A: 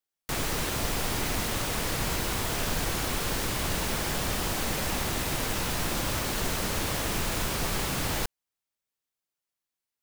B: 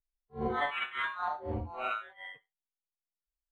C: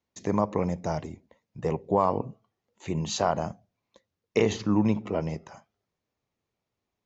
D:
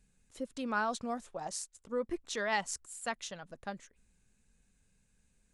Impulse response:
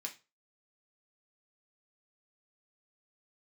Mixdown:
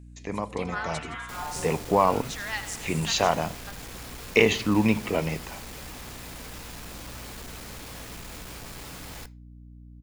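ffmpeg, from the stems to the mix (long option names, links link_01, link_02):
-filter_complex "[0:a]asoftclip=type=tanh:threshold=-30.5dB,adelay=1000,volume=-9dB,asplit=2[link_01][link_02];[link_02]volume=-6dB[link_03];[1:a]adelay=150,volume=-2dB,asplit=2[link_04][link_05];[link_05]volume=-9dB[link_06];[2:a]dynaudnorm=framelen=220:gausssize=11:maxgain=11.5dB,equalizer=frequency=2500:width_type=o:width=1.1:gain=11,volume=-8dB,asplit=3[link_07][link_08][link_09];[link_08]volume=-7dB[link_10];[3:a]highpass=1300,volume=2.5dB,asplit=2[link_11][link_12];[link_12]volume=-11.5dB[link_13];[link_09]apad=whole_len=161668[link_14];[link_04][link_14]sidechaincompress=threshold=-32dB:ratio=8:attack=16:release=1090[link_15];[4:a]atrim=start_sample=2205[link_16];[link_03][link_10]amix=inputs=2:normalize=0[link_17];[link_17][link_16]afir=irnorm=-1:irlink=0[link_18];[link_06][link_13]amix=inputs=2:normalize=0,aecho=0:1:83|166|249|332|415|498|581|664|747:1|0.59|0.348|0.205|0.121|0.0715|0.0422|0.0249|0.0147[link_19];[link_01][link_15][link_07][link_11][link_18][link_19]amix=inputs=6:normalize=0,aeval=exprs='val(0)+0.00562*(sin(2*PI*60*n/s)+sin(2*PI*2*60*n/s)/2+sin(2*PI*3*60*n/s)/3+sin(2*PI*4*60*n/s)/4+sin(2*PI*5*60*n/s)/5)':channel_layout=same"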